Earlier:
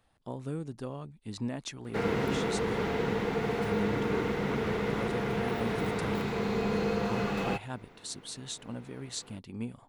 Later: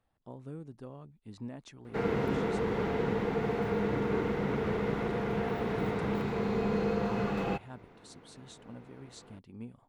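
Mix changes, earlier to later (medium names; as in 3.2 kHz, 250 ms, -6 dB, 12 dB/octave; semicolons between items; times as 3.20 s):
speech -7.0 dB; master: add treble shelf 2.3 kHz -8.5 dB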